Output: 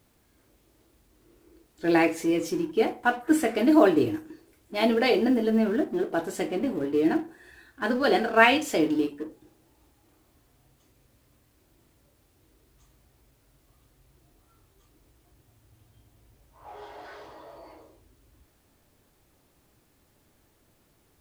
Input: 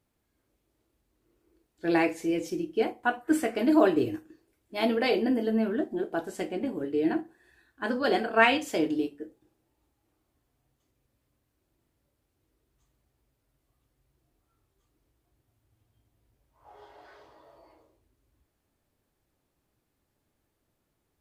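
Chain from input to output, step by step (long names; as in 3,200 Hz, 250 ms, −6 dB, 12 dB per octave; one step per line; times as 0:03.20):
mu-law and A-law mismatch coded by mu
level +2.5 dB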